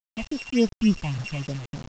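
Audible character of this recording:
a buzz of ramps at a fixed pitch in blocks of 16 samples
phaser sweep stages 6, 3.5 Hz, lowest notch 380–2,500 Hz
a quantiser's noise floor 6 bits, dither none
mu-law

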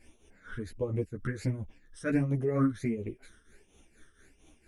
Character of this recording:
phaser sweep stages 12, 1.4 Hz, lowest notch 770–1,600 Hz
tremolo triangle 4.3 Hz, depth 75%
a shimmering, thickened sound

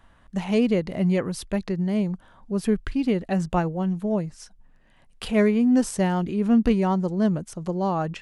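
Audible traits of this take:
background noise floor −56 dBFS
spectral slope −6.5 dB per octave

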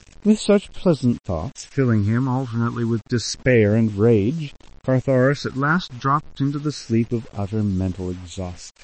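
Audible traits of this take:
phaser sweep stages 6, 0.29 Hz, lowest notch 580–1,800 Hz
a quantiser's noise floor 8 bits, dither none
MP3

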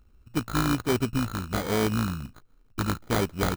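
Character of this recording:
a buzz of ramps at a fixed pitch in blocks of 32 samples
phaser sweep stages 2, 1.3 Hz, lowest notch 530–2,000 Hz
aliases and images of a low sample rate 2,700 Hz, jitter 0%

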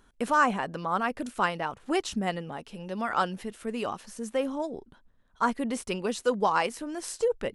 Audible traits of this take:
background noise floor −62 dBFS
spectral slope −4.5 dB per octave

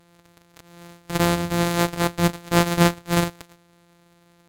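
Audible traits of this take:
a buzz of ramps at a fixed pitch in blocks of 256 samples
SBC

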